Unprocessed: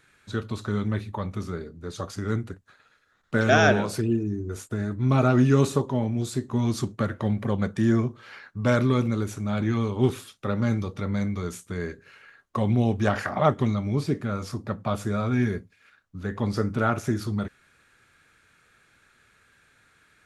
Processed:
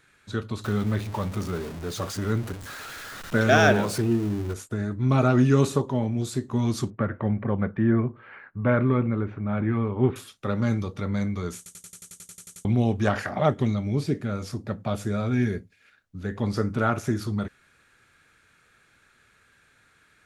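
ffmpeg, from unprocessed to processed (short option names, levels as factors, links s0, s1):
-filter_complex "[0:a]asettb=1/sr,asplit=3[s0][s1][s2];[s0]atrim=end=0.644[s3];[s1]atrim=start=0.64:end=4.54,asetpts=PTS-STARTPTS,afade=t=in:d=0.004:c=qsin,afade=t=out:st=3.896:d=0.004:c=qsin,aeval=exprs='val(0)+0.5*0.0211*sgn(val(0))':c=same[s4];[s2]atrim=start=4.536[s5];[s3][s4]acrossfade=d=0.004:c1=hsin:c2=qsin[s6];[s6][s5]acrossfade=d=0.004:c1=qsin:c2=hsin,asettb=1/sr,asplit=3[s7][s8][s9];[s7]atrim=end=6.904[s10];[s8]atrim=start=6.9:end=10.16,asetpts=PTS-STARTPTS,afade=t=in:d=0.004:c=qsin,afade=t=out:st=3.256:d=0.004:c=qsin,lowpass=f=2300:w=0.5412,lowpass=f=2300:w=1.3066[s11];[s9]atrim=start=10.156[s12];[s10][s11]acrossfade=d=0.004:c1=hsin:c2=qsin[s13];[s13][s12]acrossfade=d=0.004:c1=qsin:c2=hsin,asettb=1/sr,asplit=3[s14][s15][s16];[s14]atrim=end=13.214[s17];[s15]atrim=start=13.21:end=16.44,asetpts=PTS-STARTPTS,afade=t=in:d=0.004:c=qsin,afade=t=out:st=3.226:d=0.004:c=qsin,equalizer=f=1100:t=o:w=0.58:g=-6.5[s18];[s16]atrim=start=16.436[s19];[s17][s18]acrossfade=d=0.004:c1=hsin:c2=qsin[s20];[s20][s19]acrossfade=d=0.004:c1=qsin:c2=hsin,asplit=13[s21][s22][s23][s24][s25][s26][s27][s28][s29][s30][s31][s32][s33];[s21]atrim=end=11.662[s34];[s22]atrim=start=11.568:end=11.662[s35];[s23]atrim=start=11.568:end=11.662[s36];[s24]atrim=start=11.568:end=11.662[s37];[s25]atrim=start=11.568:end=11.662[s38];[s26]atrim=start=11.568:end=11.662[s39];[s27]atrim=start=11.568:end=11.662[s40];[s28]atrim=start=11.568:end=11.662[s41];[s29]atrim=start=11.568:end=11.662[s42];[s30]atrim=start=11.568:end=11.662[s43];[s31]atrim=start=11.568:end=11.662[s44];[s32]atrim=start=11.568:end=11.662[s45];[s33]atrim=start=12.648[s46];[s34][s35]acrossfade=d=0.004:c1=hsin:c2=hsin[s47];[s47][s36]acrossfade=d=0.004:c1=hsin:c2=hsin[s48];[s48][s37]acrossfade=d=0.004:c1=hsin:c2=hsin[s49];[s49][s38]acrossfade=d=0.004:c1=hsin:c2=hsin[s50];[s50][s39]acrossfade=d=0.004:c1=hsin:c2=hsin[s51];[s51][s40]acrossfade=d=0.004:c1=hsin:c2=hsin[s52];[s52][s41]acrossfade=d=0.004:c1=hsin:c2=hsin[s53];[s53][s42]acrossfade=d=0.004:c1=hsin:c2=hsin[s54];[s54][s43]acrossfade=d=0.004:c1=hsin:c2=hsin[s55];[s55][s44]acrossfade=d=0.004:c1=hsin:c2=hsin[s56];[s56][s45]acrossfade=d=0.004:c1=hsin:c2=hsin[s57];[s57][s46]acrossfade=d=0.004:c1=hsin:c2=hsin"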